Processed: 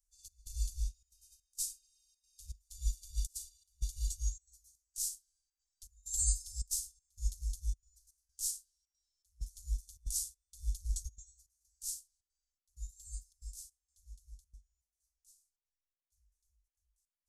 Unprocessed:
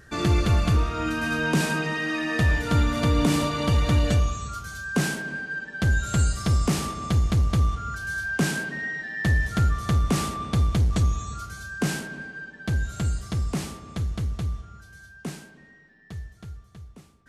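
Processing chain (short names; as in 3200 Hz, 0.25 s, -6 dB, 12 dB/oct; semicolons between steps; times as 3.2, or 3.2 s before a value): inverse Chebyshev band-stop 120–2000 Hz, stop band 60 dB; step gate "xxx..xxxxxx." 161 bpm -12 dB; upward expander 2.5:1, over -50 dBFS; gain +7 dB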